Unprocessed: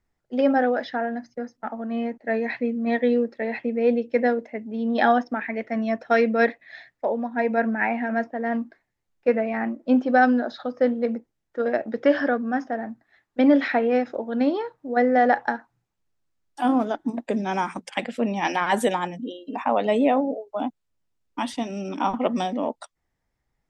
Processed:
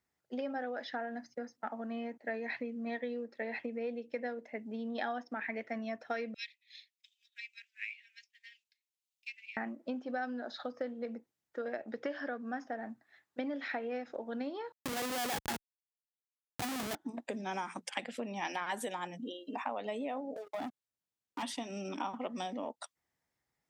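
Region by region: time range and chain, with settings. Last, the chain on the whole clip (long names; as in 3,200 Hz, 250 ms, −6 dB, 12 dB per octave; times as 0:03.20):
0:06.34–0:09.57: Butterworth high-pass 2,500 Hz 48 dB per octave + transient designer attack +5 dB, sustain −5 dB
0:14.72–0:16.95: notch filter 610 Hz, Q 6.9 + comparator with hysteresis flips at −29.5 dBFS
0:20.36–0:21.43: leveller curve on the samples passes 3 + downward compressor 4 to 1, threshold −31 dBFS
whole clip: high-pass filter 81 Hz; downward compressor 6 to 1, threshold −29 dBFS; spectral tilt +1.5 dB per octave; level −5 dB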